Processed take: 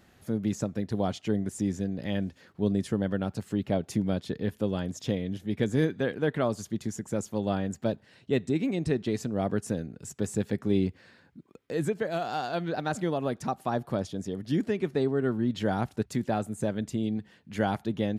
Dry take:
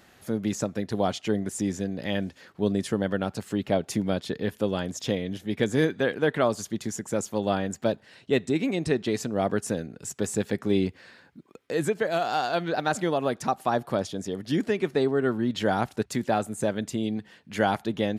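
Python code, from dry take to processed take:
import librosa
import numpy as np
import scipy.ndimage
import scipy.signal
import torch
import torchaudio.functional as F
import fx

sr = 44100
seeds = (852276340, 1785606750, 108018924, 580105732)

y = fx.low_shelf(x, sr, hz=280.0, db=9.5)
y = y * librosa.db_to_amplitude(-6.5)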